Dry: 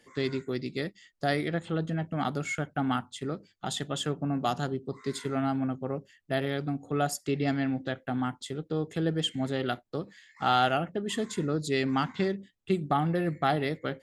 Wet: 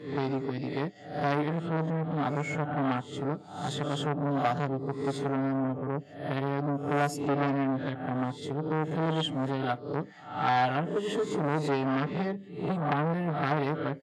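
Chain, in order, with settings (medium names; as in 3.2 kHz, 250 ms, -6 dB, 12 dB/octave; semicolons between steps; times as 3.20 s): reverse spectral sustain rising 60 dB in 0.54 s; high-pass 360 Hz 6 dB/octave; tilt EQ -3.5 dB/octave; comb 6.8 ms, depth 91%; transformer saturation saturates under 1.6 kHz; trim -2 dB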